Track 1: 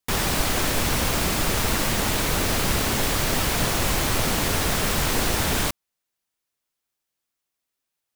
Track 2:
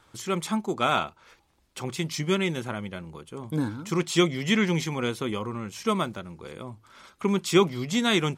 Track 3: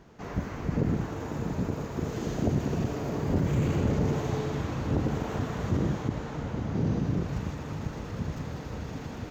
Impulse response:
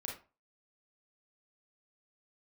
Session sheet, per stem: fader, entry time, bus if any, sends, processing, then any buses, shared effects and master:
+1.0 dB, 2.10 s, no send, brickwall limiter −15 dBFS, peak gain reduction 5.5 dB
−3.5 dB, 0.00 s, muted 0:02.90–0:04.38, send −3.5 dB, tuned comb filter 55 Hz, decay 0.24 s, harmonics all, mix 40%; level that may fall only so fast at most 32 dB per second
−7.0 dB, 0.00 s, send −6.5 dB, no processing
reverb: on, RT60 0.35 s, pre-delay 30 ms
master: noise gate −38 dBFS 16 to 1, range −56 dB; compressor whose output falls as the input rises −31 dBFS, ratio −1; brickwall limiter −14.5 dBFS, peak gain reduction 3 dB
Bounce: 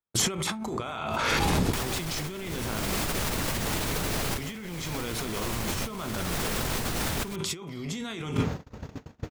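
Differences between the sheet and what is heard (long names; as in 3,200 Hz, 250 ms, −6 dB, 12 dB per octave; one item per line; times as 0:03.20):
stem 1: entry 2.10 s → 1.65 s
stem 2 −3.5 dB → +4.5 dB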